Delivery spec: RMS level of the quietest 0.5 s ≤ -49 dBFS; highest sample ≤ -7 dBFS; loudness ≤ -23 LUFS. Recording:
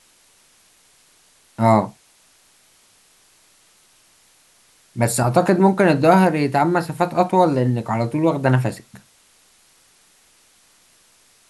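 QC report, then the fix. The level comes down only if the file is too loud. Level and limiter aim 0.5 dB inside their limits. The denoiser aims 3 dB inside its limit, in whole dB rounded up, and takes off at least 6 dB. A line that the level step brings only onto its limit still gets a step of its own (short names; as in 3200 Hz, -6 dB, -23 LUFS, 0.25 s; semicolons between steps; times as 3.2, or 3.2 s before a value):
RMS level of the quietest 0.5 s -56 dBFS: OK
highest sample -3.0 dBFS: fail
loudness -18.0 LUFS: fail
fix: gain -5.5 dB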